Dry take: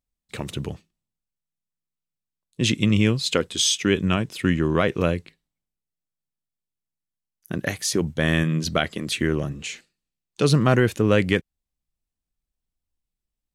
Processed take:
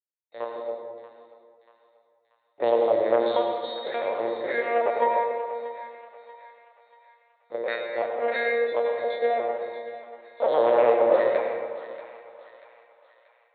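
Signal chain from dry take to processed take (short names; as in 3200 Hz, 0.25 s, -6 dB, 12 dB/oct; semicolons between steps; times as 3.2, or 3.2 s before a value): bell 840 Hz +5.5 dB 1.8 oct; sample leveller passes 2; octave resonator A#, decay 0.68 s; added harmonics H 3 -31 dB, 4 -19 dB, 5 -30 dB, 8 -8 dB, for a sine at -15.5 dBFS; LPC vocoder at 8 kHz pitch kept; resonant high-pass 540 Hz, resonance Q 5.3; thinning echo 0.635 s, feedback 52%, high-pass 830 Hz, level -13 dB; on a send at -3 dB: reverb RT60 1.5 s, pre-delay 76 ms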